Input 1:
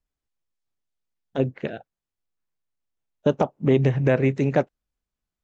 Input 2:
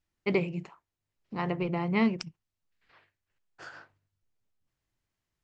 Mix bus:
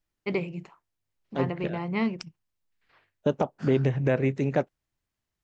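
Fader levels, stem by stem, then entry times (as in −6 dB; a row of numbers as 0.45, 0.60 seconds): −4.5, −1.5 decibels; 0.00, 0.00 seconds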